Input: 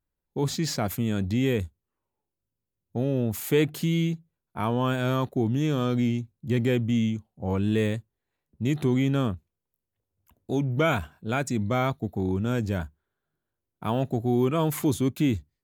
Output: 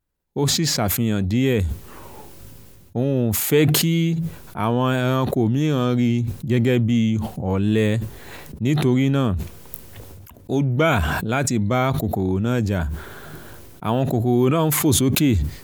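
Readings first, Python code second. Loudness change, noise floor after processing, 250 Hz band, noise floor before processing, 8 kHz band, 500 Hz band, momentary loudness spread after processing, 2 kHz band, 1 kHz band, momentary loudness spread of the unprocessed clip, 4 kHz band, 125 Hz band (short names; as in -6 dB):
+6.5 dB, -44 dBFS, +6.0 dB, -85 dBFS, +13.5 dB, +5.5 dB, 14 LU, +6.5 dB, +6.0 dB, 7 LU, +9.5 dB, +6.5 dB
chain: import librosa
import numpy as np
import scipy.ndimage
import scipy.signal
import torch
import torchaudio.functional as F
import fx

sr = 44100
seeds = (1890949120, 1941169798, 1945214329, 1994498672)

y = fx.sustainer(x, sr, db_per_s=23.0)
y = F.gain(torch.from_numpy(y), 5.0).numpy()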